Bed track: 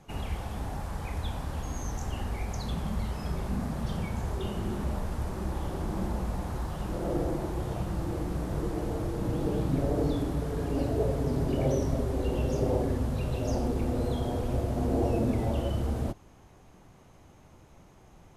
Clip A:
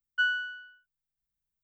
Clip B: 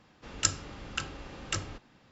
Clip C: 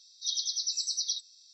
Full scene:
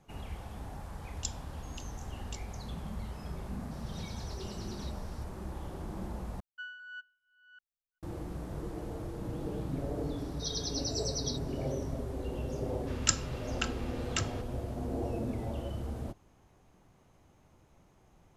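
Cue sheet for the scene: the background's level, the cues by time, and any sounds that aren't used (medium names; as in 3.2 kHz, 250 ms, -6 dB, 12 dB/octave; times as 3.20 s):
bed track -8 dB
0.80 s: add B -11 dB + steep high-pass 2.9 kHz
3.71 s: add C -14 dB + one-bit delta coder 64 kbps, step -42.5 dBFS
6.40 s: replace with A -17.5 dB + chunks repeated in reverse 396 ms, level -2 dB
10.18 s: add C -6 dB
12.64 s: add B -0.5 dB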